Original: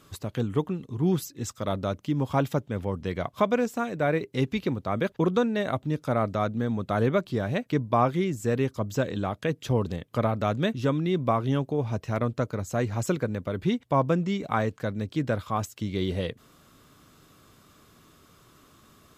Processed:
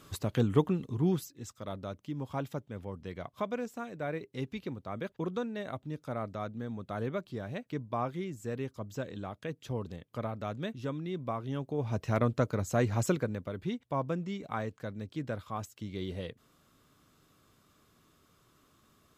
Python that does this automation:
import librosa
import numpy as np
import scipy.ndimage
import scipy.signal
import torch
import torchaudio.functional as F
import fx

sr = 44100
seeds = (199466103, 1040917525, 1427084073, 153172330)

y = fx.gain(x, sr, db=fx.line((0.86, 0.5), (1.4, -11.0), (11.49, -11.0), (12.07, -1.0), (13.0, -1.0), (13.63, -9.5)))